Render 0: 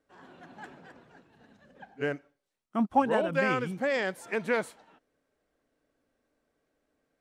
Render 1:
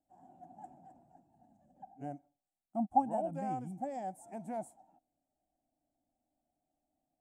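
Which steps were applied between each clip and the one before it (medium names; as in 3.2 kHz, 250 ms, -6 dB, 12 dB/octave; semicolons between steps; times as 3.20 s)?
FFT filter 320 Hz 0 dB, 450 Hz -19 dB, 750 Hz +11 dB, 1.1 kHz -18 dB, 1.5 kHz -22 dB, 2.2 kHz -22 dB, 4.2 kHz -24 dB, 8 kHz +2 dB, 12 kHz -4 dB; trim -7.5 dB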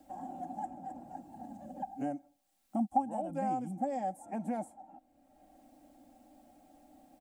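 comb 3.7 ms, depth 54%; three bands compressed up and down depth 70%; trim +3 dB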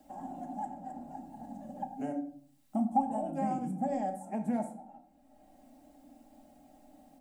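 reverberation RT60 0.55 s, pre-delay 5 ms, DRR 4.5 dB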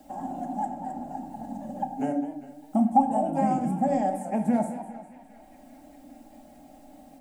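band-passed feedback delay 400 ms, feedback 76%, band-pass 2.4 kHz, level -16 dB; modulated delay 204 ms, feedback 44%, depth 152 cents, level -13.5 dB; trim +8 dB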